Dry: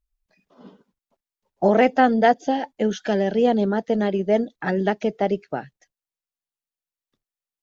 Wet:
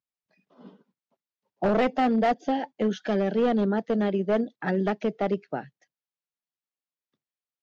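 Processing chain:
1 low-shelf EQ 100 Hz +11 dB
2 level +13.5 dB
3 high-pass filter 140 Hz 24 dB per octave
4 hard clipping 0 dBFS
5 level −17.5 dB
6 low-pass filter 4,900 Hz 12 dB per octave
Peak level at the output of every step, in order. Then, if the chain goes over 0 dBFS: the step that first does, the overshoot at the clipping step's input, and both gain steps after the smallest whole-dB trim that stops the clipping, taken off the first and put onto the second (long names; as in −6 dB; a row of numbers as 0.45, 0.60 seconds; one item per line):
−3.5, +10.0, +10.0, 0.0, −17.5, −17.0 dBFS
step 2, 10.0 dB
step 2 +3.5 dB, step 5 −7.5 dB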